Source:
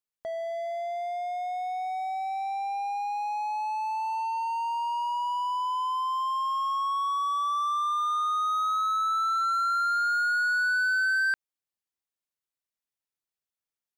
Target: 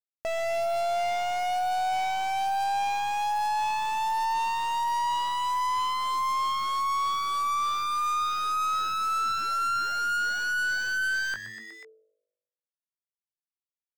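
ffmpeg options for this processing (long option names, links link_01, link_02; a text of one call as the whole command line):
ffmpeg -i in.wav -filter_complex "[0:a]alimiter=level_in=3.5dB:limit=-24dB:level=0:latency=1,volume=-3.5dB,acrusher=bits=6:dc=4:mix=0:aa=0.000001,lowpass=frequency=1300:poles=1,bandreject=frequency=50:width_type=h:width=6,bandreject=frequency=100:width_type=h:width=6,bandreject=frequency=150:width_type=h:width=6,bandreject=frequency=200:width_type=h:width=6,asplit=2[link_01][link_02];[link_02]adelay=19,volume=-11dB[link_03];[link_01][link_03]amix=inputs=2:normalize=0,asplit=5[link_04][link_05][link_06][link_07][link_08];[link_05]adelay=122,afreqshift=110,volume=-19.5dB[link_09];[link_06]adelay=244,afreqshift=220,volume=-25.3dB[link_10];[link_07]adelay=366,afreqshift=330,volume=-31.2dB[link_11];[link_08]adelay=488,afreqshift=440,volume=-37dB[link_12];[link_04][link_09][link_10][link_11][link_12]amix=inputs=5:normalize=0,areverse,acompressor=mode=upward:threshold=-39dB:ratio=2.5,areverse,asoftclip=type=hard:threshold=-32.5dB,volume=8dB" out.wav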